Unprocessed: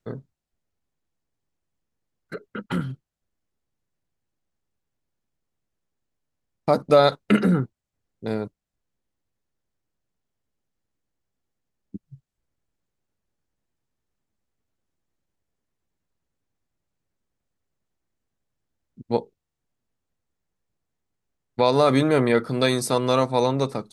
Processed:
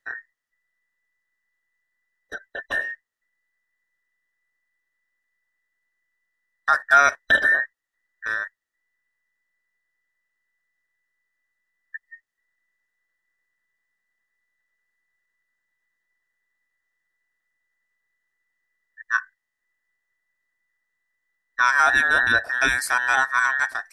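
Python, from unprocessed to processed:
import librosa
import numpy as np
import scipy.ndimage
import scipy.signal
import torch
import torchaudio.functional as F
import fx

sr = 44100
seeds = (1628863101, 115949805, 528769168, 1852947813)

y = fx.band_invert(x, sr, width_hz=2000)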